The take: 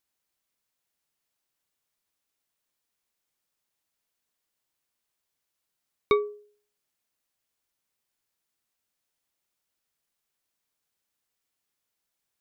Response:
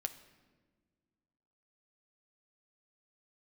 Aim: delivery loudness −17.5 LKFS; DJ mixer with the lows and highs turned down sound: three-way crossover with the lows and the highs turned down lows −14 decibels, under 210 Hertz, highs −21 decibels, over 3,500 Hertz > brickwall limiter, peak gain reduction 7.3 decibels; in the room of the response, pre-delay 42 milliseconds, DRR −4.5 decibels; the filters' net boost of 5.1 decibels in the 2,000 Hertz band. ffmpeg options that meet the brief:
-filter_complex "[0:a]equalizer=frequency=2000:width_type=o:gain=7,asplit=2[link_01][link_02];[1:a]atrim=start_sample=2205,adelay=42[link_03];[link_02][link_03]afir=irnorm=-1:irlink=0,volume=5.5dB[link_04];[link_01][link_04]amix=inputs=2:normalize=0,acrossover=split=210 3500:gain=0.2 1 0.0891[link_05][link_06][link_07];[link_05][link_06][link_07]amix=inputs=3:normalize=0,volume=12.5dB,alimiter=limit=-1.5dB:level=0:latency=1"

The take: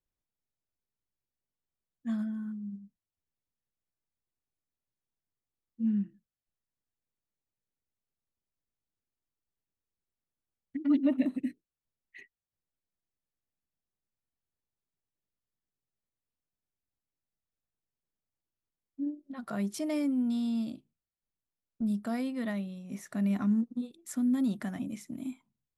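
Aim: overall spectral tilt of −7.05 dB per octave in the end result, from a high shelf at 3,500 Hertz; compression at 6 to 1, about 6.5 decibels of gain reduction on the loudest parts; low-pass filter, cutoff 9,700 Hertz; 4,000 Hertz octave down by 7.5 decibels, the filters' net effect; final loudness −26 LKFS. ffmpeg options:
ffmpeg -i in.wav -af "lowpass=9700,highshelf=frequency=3500:gain=-3.5,equalizer=frequency=4000:width_type=o:gain=-7.5,acompressor=threshold=-28dB:ratio=6,volume=9dB" out.wav

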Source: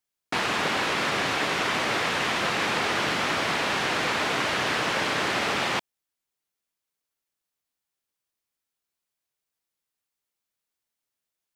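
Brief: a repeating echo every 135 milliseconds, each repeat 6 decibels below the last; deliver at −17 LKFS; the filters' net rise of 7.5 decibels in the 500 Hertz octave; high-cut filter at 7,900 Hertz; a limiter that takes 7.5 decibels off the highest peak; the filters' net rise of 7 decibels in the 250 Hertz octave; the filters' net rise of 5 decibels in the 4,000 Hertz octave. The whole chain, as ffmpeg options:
ffmpeg -i in.wav -af "lowpass=7900,equalizer=frequency=250:width_type=o:gain=6.5,equalizer=frequency=500:width_type=o:gain=7.5,equalizer=frequency=4000:width_type=o:gain=6.5,alimiter=limit=-16.5dB:level=0:latency=1,aecho=1:1:135|270|405|540|675|810:0.501|0.251|0.125|0.0626|0.0313|0.0157,volume=6.5dB" out.wav

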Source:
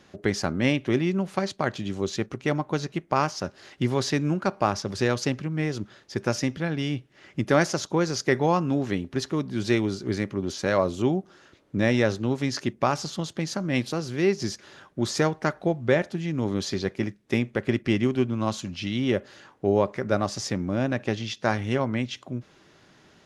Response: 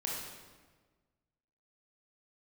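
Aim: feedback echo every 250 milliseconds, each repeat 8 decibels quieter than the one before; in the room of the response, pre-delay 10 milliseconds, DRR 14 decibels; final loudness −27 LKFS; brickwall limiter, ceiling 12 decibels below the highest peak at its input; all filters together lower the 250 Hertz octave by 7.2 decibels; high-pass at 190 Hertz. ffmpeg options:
-filter_complex "[0:a]highpass=190,equalizer=frequency=250:width_type=o:gain=-8,alimiter=limit=-18.5dB:level=0:latency=1,aecho=1:1:250|500|750|1000|1250:0.398|0.159|0.0637|0.0255|0.0102,asplit=2[link_01][link_02];[1:a]atrim=start_sample=2205,adelay=10[link_03];[link_02][link_03]afir=irnorm=-1:irlink=0,volume=-17dB[link_04];[link_01][link_04]amix=inputs=2:normalize=0,volume=5dB"

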